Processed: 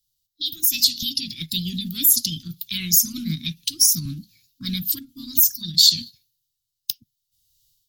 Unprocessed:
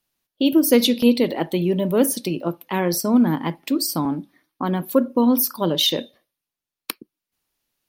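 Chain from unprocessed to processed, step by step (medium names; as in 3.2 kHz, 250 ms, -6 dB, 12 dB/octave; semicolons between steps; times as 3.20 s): elliptic band-stop 120–3200 Hz, stop band 70 dB; level rider gain up to 12.5 dB; in parallel at -2.5 dB: peak limiter -12 dBFS, peak gain reduction 10.5 dB; on the sum: formant shift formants +3 st; trim -1.5 dB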